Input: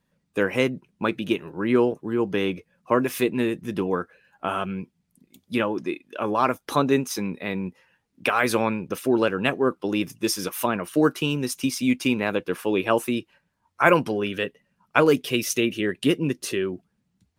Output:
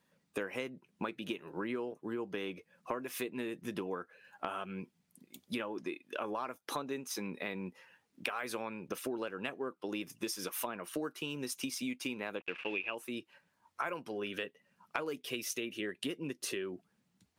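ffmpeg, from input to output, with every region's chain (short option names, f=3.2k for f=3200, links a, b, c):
-filter_complex "[0:a]asettb=1/sr,asplit=3[a][b][c];[a]atrim=end=12.404[d];[b]atrim=start=12.4:end=12.95,asetpts=PTS-STARTPTS,afade=t=in:d=0.004:c=qsin,afade=t=out:st=0.546:d=0.004:c=qsin,acrusher=bits=5:mix=0:aa=0.5,lowpass=f=2.6k:t=q:w=9.2[e];[c]atrim=start=12.946[f];[d][e]acrossfade=d=0.004:c1=hsin:c2=qsin[g];[g][f]acrossfade=d=0.004:c1=qsin:c2=hsin,highpass=f=320:p=1,acompressor=threshold=-37dB:ratio=8,volume=1.5dB"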